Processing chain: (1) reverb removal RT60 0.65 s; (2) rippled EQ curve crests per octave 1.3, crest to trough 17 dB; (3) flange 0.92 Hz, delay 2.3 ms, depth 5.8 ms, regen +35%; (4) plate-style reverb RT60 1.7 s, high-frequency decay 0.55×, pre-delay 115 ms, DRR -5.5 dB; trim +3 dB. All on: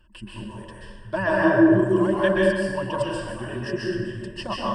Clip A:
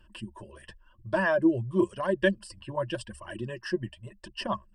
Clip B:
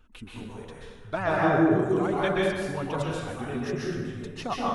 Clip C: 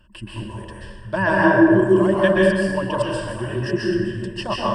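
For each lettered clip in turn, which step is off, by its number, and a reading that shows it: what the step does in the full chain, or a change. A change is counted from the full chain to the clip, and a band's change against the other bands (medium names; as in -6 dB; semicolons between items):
4, crest factor change +2.5 dB; 2, 1 kHz band +4.0 dB; 3, loudness change +3.5 LU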